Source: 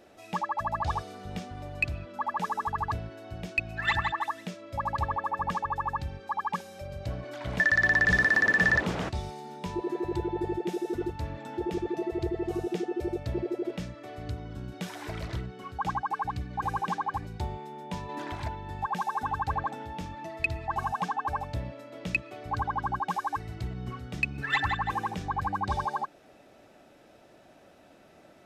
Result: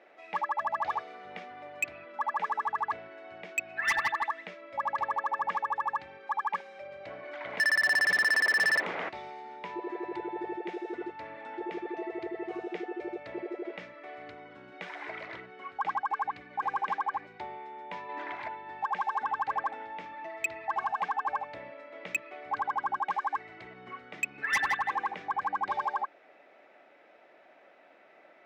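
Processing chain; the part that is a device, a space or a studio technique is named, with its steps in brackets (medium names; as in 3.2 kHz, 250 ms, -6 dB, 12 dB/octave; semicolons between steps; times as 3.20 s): megaphone (band-pass 480–2500 Hz; peaking EQ 2.1 kHz +9 dB 0.41 oct; hard clipper -22.5 dBFS, distortion -9 dB)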